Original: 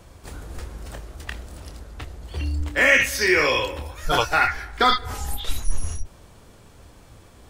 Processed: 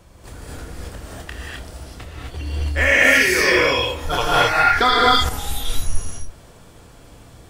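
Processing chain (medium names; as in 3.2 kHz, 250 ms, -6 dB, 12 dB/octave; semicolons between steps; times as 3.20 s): gated-style reverb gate 280 ms rising, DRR -5 dB; 4.66–5.29 s: level flattener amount 50%; trim -2 dB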